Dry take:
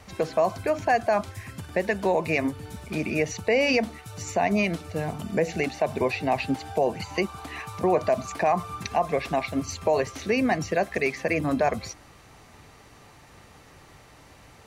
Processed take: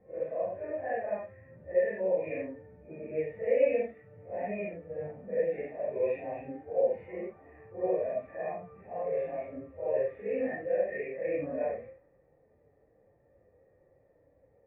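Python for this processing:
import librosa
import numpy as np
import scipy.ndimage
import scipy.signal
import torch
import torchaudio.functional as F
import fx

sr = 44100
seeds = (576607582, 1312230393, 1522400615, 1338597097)

y = fx.phase_scramble(x, sr, seeds[0], window_ms=200)
y = fx.hpss(y, sr, part='percussive', gain_db=-7)
y = fx.formant_cascade(y, sr, vowel='e')
y = fx.dynamic_eq(y, sr, hz=2300.0, q=0.82, threshold_db=-51.0, ratio=4.0, max_db=-4)
y = fx.env_lowpass(y, sr, base_hz=710.0, full_db=-28.0)
y = y * 10.0 ** (4.0 / 20.0)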